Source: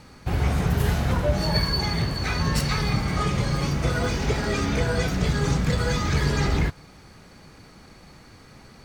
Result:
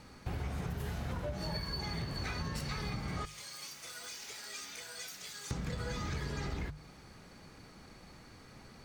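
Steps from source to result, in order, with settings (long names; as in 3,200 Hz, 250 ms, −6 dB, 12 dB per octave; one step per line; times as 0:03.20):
0:03.25–0:05.51: first difference
mains-hum notches 50/100/150 Hz
downward compressor 12 to 1, threshold −28 dBFS, peak gain reduction 11.5 dB
level −6 dB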